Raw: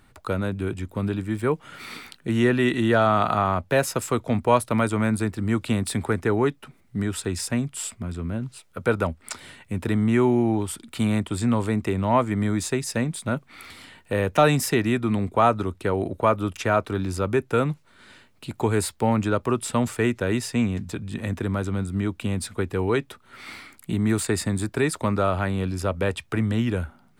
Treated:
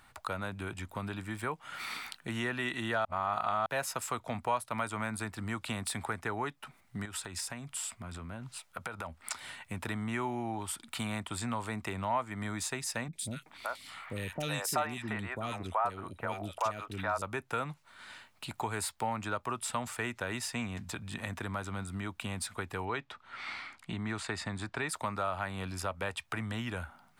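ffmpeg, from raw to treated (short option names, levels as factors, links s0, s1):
-filter_complex "[0:a]asettb=1/sr,asplit=3[s0][s1][s2];[s0]atrim=end=7.054[s3];[s1]atrim=start=7.05:end=9.23,asetpts=PTS-STARTPTS,afade=t=in:d=0.004:c=qsin,afade=t=out:st=2.176:d=0.004:c=qsin,acompressor=threshold=0.0316:ratio=6:attack=3.2:release=140:knee=1:detection=peak[s4];[s2]atrim=start=9.226[s5];[s3][s4]acrossfade=d=0.004:c1=hsin:c2=qsin[s6];[s6][s5]acrossfade=d=0.004:c1=qsin:c2=hsin,asettb=1/sr,asplit=3[s7][s8][s9];[s7]atrim=end=13.084[s10];[s8]atrim=start=13.08:end=17.22,asetpts=PTS-STARTPTS,afade=t=in:d=0.004:c=qsin,afade=t=out:st=4.136:d=0.004:c=qsin,acrossover=split=450|2200[s11][s12][s13];[s13]adelay=50[s14];[s12]adelay=380[s15];[s11][s15][s14]amix=inputs=3:normalize=0,atrim=end_sample=182574[s16];[s9]atrim=start=17.216[s17];[s10][s16]acrossfade=d=0.004:c1=hsin:c2=qsin[s18];[s18][s17]acrossfade=d=0.004:c1=qsin:c2=hsin,asettb=1/sr,asplit=3[s19][s20][s21];[s19]atrim=end=22.854[s22];[s20]atrim=start=22.85:end=24.89,asetpts=PTS-STARTPTS,afade=t=in:d=0.004:c=qsin,afade=t=out:st=2.036:d=0.004:c=qsin,lowpass=4700[s23];[s21]atrim=start=24.886[s24];[s22][s23]acrossfade=d=0.004:c1=hsin:c2=qsin[s25];[s25][s24]acrossfade=d=0.004:c1=qsin:c2=hsin,asplit=3[s26][s27][s28];[s26]atrim=end=3.052[s29];[s27]atrim=start=3.048:end=3.662,asetpts=PTS-STARTPTS,areverse[s30];[s28]atrim=start=3.658[s31];[s29][s30]acrossfade=d=0.004:c1=hsin:c2=hsin[s32];[s32][s31]acrossfade=d=0.004:c1=hsin:c2=hsin,lowshelf=f=580:t=q:w=1.5:g=-8.5,acompressor=threshold=0.0141:ratio=2"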